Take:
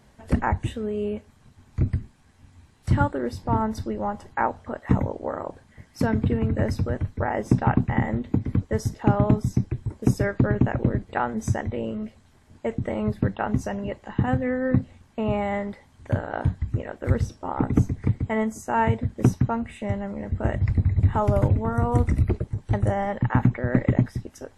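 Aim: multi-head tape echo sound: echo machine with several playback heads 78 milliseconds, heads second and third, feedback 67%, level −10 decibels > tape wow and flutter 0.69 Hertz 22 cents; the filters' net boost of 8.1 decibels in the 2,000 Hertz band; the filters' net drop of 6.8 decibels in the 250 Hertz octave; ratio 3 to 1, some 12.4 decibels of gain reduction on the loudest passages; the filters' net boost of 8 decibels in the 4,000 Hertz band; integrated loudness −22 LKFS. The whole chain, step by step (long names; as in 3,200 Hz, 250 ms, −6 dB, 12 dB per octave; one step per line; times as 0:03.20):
parametric band 250 Hz −9 dB
parametric band 2,000 Hz +8.5 dB
parametric band 4,000 Hz +8 dB
downward compressor 3 to 1, threshold −34 dBFS
echo machine with several playback heads 78 ms, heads second and third, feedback 67%, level −10 dB
tape wow and flutter 0.69 Hz 22 cents
level +13 dB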